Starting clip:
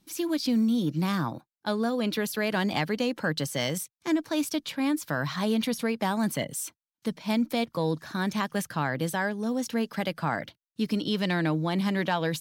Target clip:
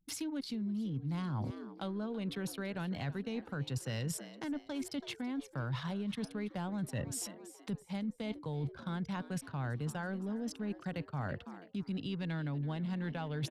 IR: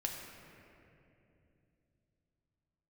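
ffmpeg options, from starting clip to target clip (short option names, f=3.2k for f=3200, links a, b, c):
-filter_complex "[0:a]adynamicequalizer=threshold=0.002:dfrequency=8100:dqfactor=2.5:tfrequency=8100:tqfactor=2.5:attack=5:release=100:ratio=0.375:range=1.5:mode=cutabove:tftype=bell,asplit=2[a][b];[b]aeval=exprs='sgn(val(0))*max(abs(val(0))-0.00668,0)':c=same,volume=-8dB[c];[a][c]amix=inputs=2:normalize=0,acrossover=split=130[d][e];[e]acompressor=threshold=-41dB:ratio=3[f];[d][f]amix=inputs=2:normalize=0,anlmdn=0.0251,lowpass=12k,asplit=5[g][h][i][j][k];[h]adelay=303,afreqshift=85,volume=-18dB[l];[i]adelay=606,afreqshift=170,volume=-24dB[m];[j]adelay=909,afreqshift=255,volume=-30dB[n];[k]adelay=1212,afreqshift=340,volume=-36.1dB[o];[g][l][m][n][o]amix=inputs=5:normalize=0,asetrate=40517,aresample=44100,areverse,acompressor=threshold=-40dB:ratio=10,areverse,equalizer=f=74:w=0.62:g=3.5,volume=4.5dB"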